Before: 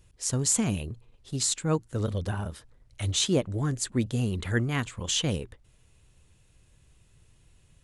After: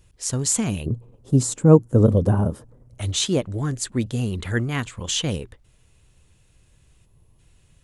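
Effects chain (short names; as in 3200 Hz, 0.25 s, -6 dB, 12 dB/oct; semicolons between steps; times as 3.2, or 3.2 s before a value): 0.86–3.01 graphic EQ 125/250/500/1000/2000/4000 Hz +10/+10/+9/+4/-7/-10 dB; 7.05–7.39 spectral gain 1200–10000 Hz -10 dB; gain +3 dB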